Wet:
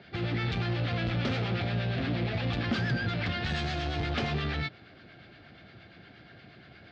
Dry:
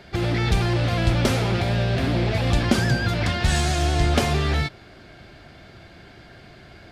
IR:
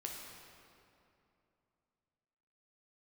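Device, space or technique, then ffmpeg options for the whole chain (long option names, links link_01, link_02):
guitar amplifier with harmonic tremolo: -filter_complex "[0:a]acrossover=split=840[link_01][link_02];[link_01]aeval=exprs='val(0)*(1-0.5/2+0.5/2*cos(2*PI*8.5*n/s))':channel_layout=same[link_03];[link_02]aeval=exprs='val(0)*(1-0.5/2-0.5/2*cos(2*PI*8.5*n/s))':channel_layout=same[link_04];[link_03][link_04]amix=inputs=2:normalize=0,asoftclip=type=tanh:threshold=-19.5dB,highpass=99,equalizer=frequency=380:width_type=q:width=4:gain=-4,equalizer=frequency=610:width_type=q:width=4:gain=-4,equalizer=frequency=970:width_type=q:width=4:gain=-7,lowpass=frequency=4300:width=0.5412,lowpass=frequency=4300:width=1.3066,volume=-2dB"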